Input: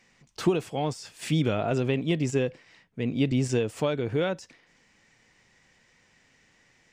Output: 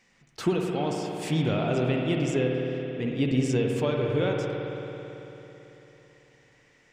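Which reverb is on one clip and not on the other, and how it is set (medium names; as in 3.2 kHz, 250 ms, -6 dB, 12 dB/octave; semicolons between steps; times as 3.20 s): spring tank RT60 3.6 s, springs 55 ms, chirp 70 ms, DRR 0 dB; trim -2 dB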